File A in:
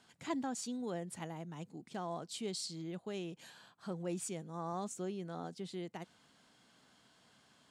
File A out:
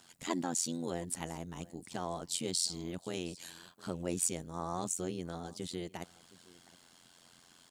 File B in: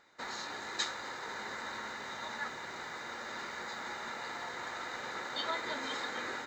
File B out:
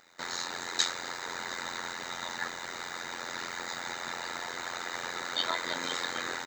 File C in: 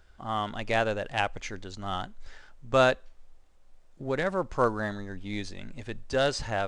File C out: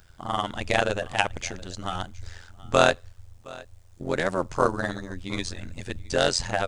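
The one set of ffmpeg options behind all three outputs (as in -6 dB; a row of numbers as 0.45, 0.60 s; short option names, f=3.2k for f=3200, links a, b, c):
-af "crystalizer=i=2:c=0,aecho=1:1:715:0.0794,tremolo=f=87:d=0.919,volume=6dB"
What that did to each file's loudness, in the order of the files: +5.0, +4.5, +2.5 LU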